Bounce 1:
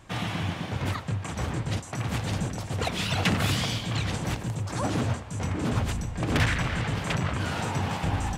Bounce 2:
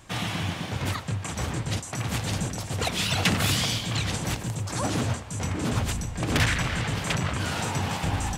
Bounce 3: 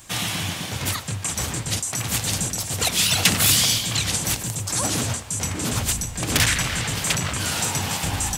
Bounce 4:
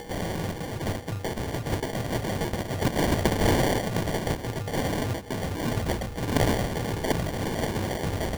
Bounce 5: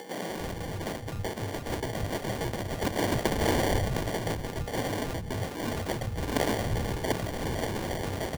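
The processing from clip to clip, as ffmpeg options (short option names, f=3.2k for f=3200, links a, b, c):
-af "highshelf=f=3.6k:g=8"
-af "crystalizer=i=3.5:c=0"
-af "aeval=exprs='val(0)+0.00708*sin(2*PI*8600*n/s)':c=same,acrusher=samples=34:mix=1:aa=0.000001,acompressor=mode=upward:threshold=-30dB:ratio=2.5,volume=-3.5dB"
-filter_complex "[0:a]acrossover=split=170[a][b];[a]adelay=300[c];[c][b]amix=inputs=2:normalize=0,volume=-2.5dB"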